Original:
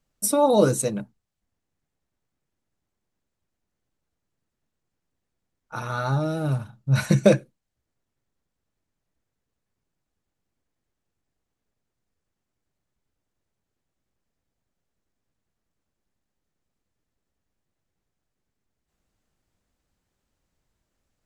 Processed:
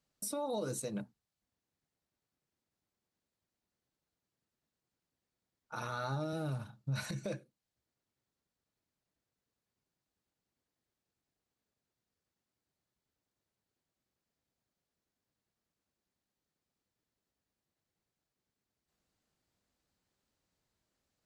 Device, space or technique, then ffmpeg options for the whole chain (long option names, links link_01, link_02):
broadcast voice chain: -filter_complex "[0:a]asettb=1/sr,asplit=3[link_01][link_02][link_03];[link_01]atrim=end=5.754[link_04];[link_02]atrim=start=5.75:end=6.33,asetpts=PTS-STARTPTS,afade=type=in:duration=0.004:curve=qsin,afade=type=out:start_time=0.576:duration=0.004:curve=qsin,highpass=100[link_05];[link_03]atrim=start=6.326[link_06];[link_04][link_05]acrossfade=duration=0.004:curve1=hsin:curve2=qsin[link_07];[link_07][link_06]acrossfade=duration=0.004:curve1=qsin:curve2=hsin,highpass=frequency=110:poles=1,deesser=0.3,acompressor=threshold=-27dB:ratio=4,equalizer=frequency=4400:width_type=o:width=0.59:gain=4.5,alimiter=limit=-23.5dB:level=0:latency=1:release=91,volume=-5dB"